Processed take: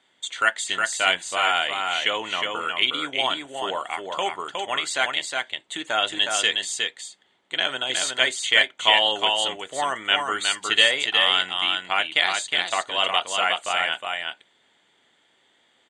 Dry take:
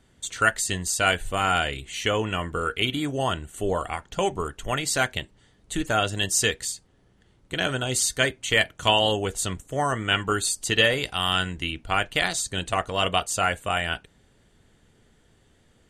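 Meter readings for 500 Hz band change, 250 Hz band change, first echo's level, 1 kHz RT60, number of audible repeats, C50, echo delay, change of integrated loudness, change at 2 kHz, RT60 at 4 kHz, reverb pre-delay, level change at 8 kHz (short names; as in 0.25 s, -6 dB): -2.5 dB, -8.5 dB, -4.0 dB, none, 1, none, 0.363 s, +2.5 dB, +3.5 dB, none, none, -3.0 dB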